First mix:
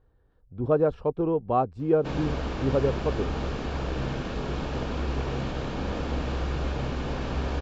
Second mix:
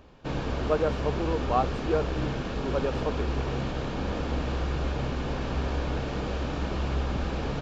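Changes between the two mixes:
speech: add spectral tilt +4 dB per octave
background: entry −1.80 s

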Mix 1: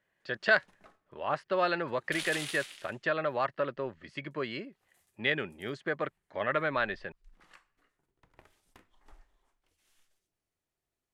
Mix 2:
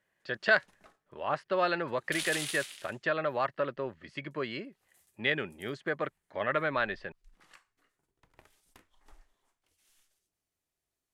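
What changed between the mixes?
background: add high-shelf EQ 4,100 Hz +7.5 dB
reverb: off

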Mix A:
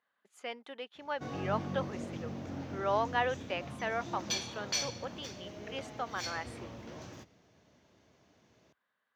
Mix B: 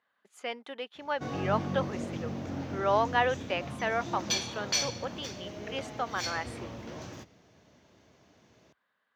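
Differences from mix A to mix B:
speech +4.5 dB
background +4.5 dB

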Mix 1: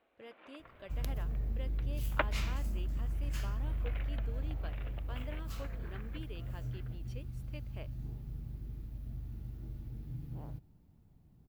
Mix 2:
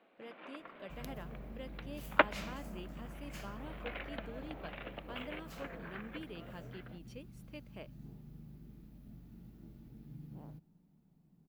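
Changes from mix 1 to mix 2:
first sound −4.5 dB
second sound +6.0 dB
master: add low shelf with overshoot 130 Hz −9 dB, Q 3

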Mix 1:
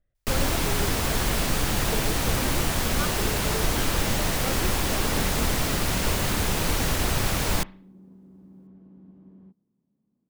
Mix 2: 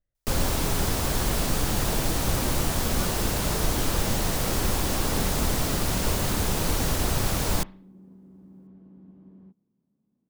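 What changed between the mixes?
speech −8.0 dB
first sound: add parametric band 2,200 Hz −5 dB 1.5 octaves

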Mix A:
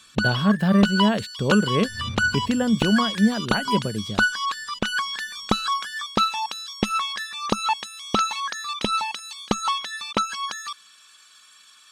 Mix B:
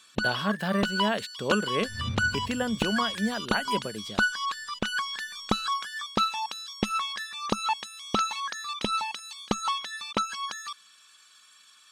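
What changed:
speech: add high-pass filter 670 Hz 6 dB per octave
first sound −4.5 dB

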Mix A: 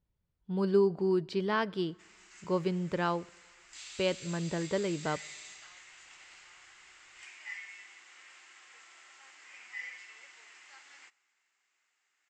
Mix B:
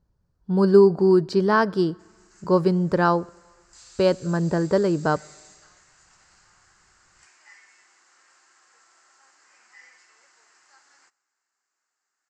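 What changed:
speech +11.5 dB
master: add flat-topped bell 2,700 Hz −12 dB 1.1 octaves

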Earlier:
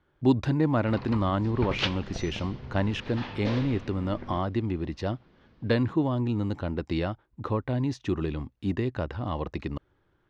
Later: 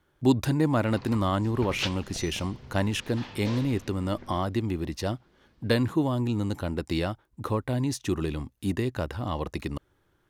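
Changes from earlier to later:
background −6.0 dB
master: remove high-frequency loss of the air 180 metres

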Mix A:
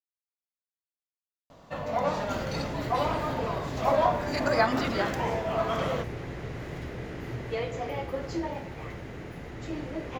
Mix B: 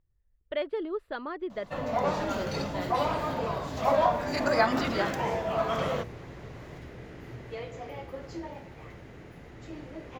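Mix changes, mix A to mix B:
speech: unmuted
second sound −7.0 dB

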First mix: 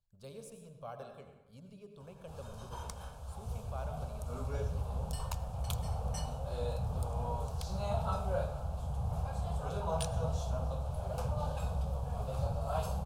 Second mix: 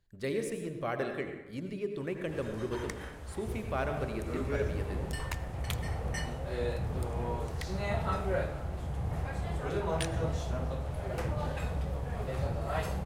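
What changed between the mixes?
speech +8.5 dB
master: remove phaser with its sweep stopped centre 800 Hz, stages 4

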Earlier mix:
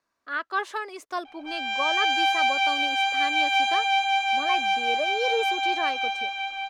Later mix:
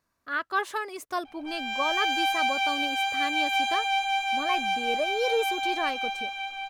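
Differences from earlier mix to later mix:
background −3.5 dB
master: remove three-way crossover with the lows and the highs turned down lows −13 dB, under 250 Hz, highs −12 dB, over 7,800 Hz

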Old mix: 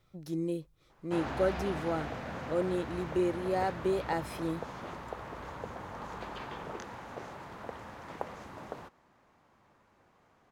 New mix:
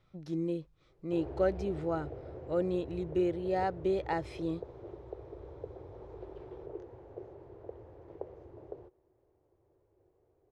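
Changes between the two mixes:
background: add drawn EQ curve 110 Hz 0 dB, 220 Hz −21 dB, 370 Hz +6 dB, 1,200 Hz −22 dB
master: add high-frequency loss of the air 100 metres

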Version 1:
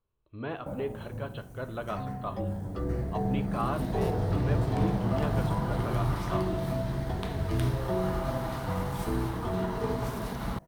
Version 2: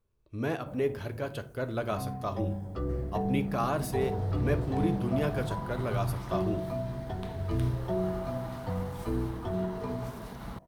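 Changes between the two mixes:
speech: remove Chebyshev low-pass with heavy ripple 4,200 Hz, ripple 6 dB
first sound −7.5 dB

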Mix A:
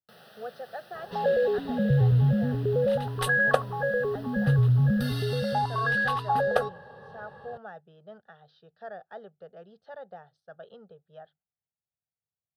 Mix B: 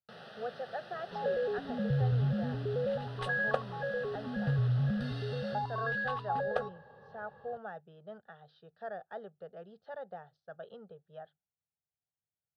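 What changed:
first sound +4.0 dB
second sound −8.0 dB
master: add high-frequency loss of the air 110 metres

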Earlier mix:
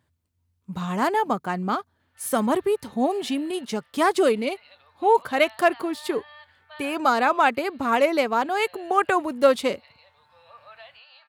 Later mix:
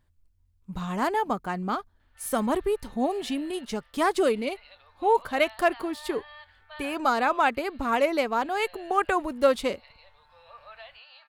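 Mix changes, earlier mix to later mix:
speech −3.5 dB
master: remove high-pass filter 93 Hz 24 dB per octave

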